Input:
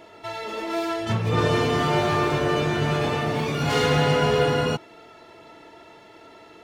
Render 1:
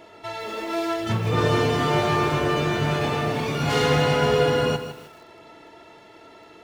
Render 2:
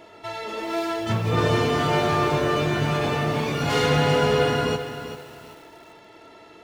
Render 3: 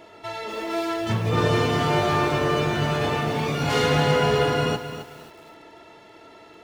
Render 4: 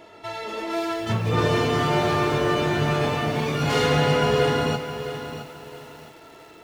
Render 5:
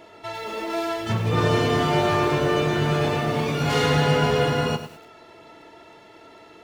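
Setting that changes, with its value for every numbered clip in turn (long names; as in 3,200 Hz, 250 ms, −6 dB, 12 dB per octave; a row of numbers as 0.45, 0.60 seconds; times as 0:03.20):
feedback echo at a low word length, delay time: 156, 391, 265, 666, 101 milliseconds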